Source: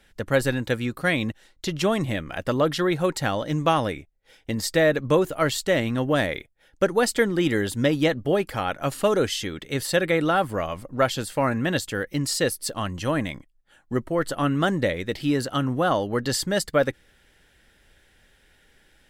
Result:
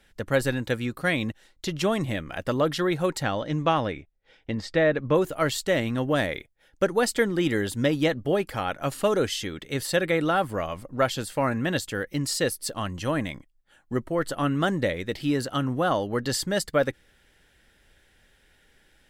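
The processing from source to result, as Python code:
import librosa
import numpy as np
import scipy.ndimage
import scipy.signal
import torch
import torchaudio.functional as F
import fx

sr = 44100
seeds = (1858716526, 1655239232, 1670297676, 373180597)

y = fx.lowpass(x, sr, hz=fx.line((3.22, 5700.0), (5.14, 2900.0)), slope=12, at=(3.22, 5.14), fade=0.02)
y = y * librosa.db_to_amplitude(-2.0)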